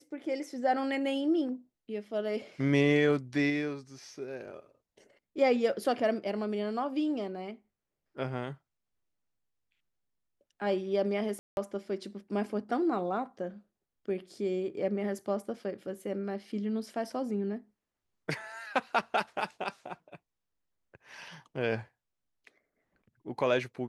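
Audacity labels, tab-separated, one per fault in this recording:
11.390000	11.570000	gap 0.181 s

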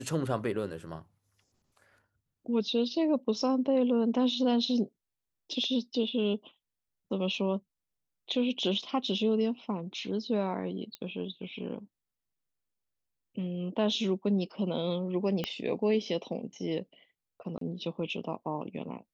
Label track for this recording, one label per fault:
10.950000	10.950000	pop -24 dBFS
15.440000	15.440000	pop -17 dBFS
17.580000	17.610000	gap 33 ms

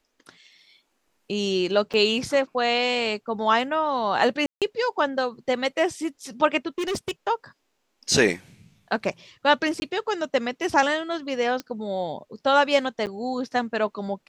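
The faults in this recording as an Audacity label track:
1.930000	1.940000	gap 7.4 ms
4.460000	4.620000	gap 0.157 s
6.780000	7.110000	clipped -23.5 dBFS
9.800000	9.820000	gap 20 ms
11.600000	11.600000	pop -17 dBFS
13.060000	13.070000	gap 8.7 ms

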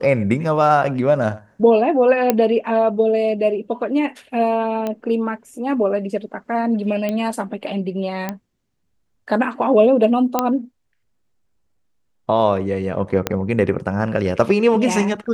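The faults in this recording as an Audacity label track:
2.300000	2.300000	pop -2 dBFS
4.870000	4.870000	pop -12 dBFS
7.090000	7.090000	pop -11 dBFS
8.290000	8.290000	pop -10 dBFS
10.390000	10.390000	pop -3 dBFS
13.270000	13.270000	pop -4 dBFS

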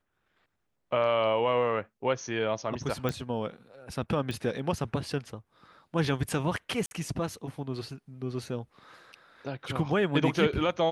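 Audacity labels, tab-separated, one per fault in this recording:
3.090000	3.090000	pop -16 dBFS
4.310000	4.310000	pop
6.860000	6.910000	gap 51 ms

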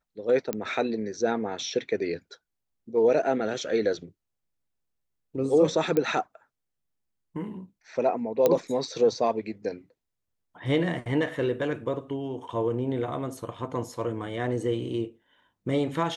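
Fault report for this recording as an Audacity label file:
0.530000	0.530000	pop -14 dBFS
5.970000	5.970000	pop -13 dBFS
8.460000	8.460000	pop -8 dBFS

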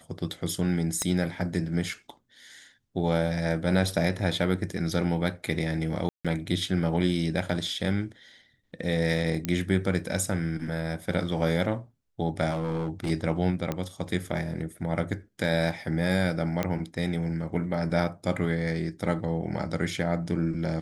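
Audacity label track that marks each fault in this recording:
1.020000	1.020000	pop -14 dBFS
6.090000	6.250000	gap 0.156 s
9.450000	9.450000	pop -13 dBFS
12.500000	13.110000	clipped -25 dBFS
13.720000	13.720000	pop -16 dBFS
16.630000	16.630000	pop -13 dBFS

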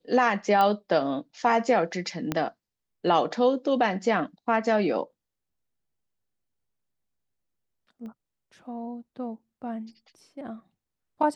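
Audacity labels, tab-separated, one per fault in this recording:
0.610000	0.610000	pop -13 dBFS
2.320000	2.320000	pop -12 dBFS
8.060000	8.060000	pop -33 dBFS

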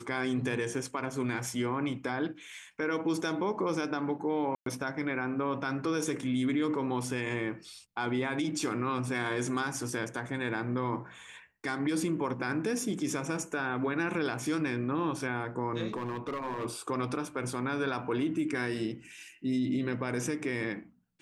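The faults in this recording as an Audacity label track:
4.550000	4.660000	gap 0.113 s
15.930000	16.660000	clipped -30.5 dBFS

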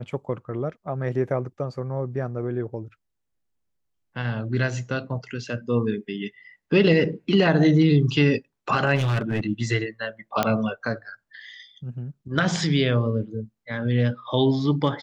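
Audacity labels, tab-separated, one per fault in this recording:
8.950000	9.410000	clipped -19.5 dBFS
10.430000	10.430000	pop -7 dBFS

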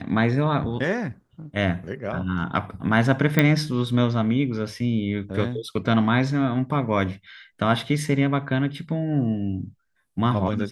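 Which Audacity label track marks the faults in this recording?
3.390000	3.390000	pop -5 dBFS

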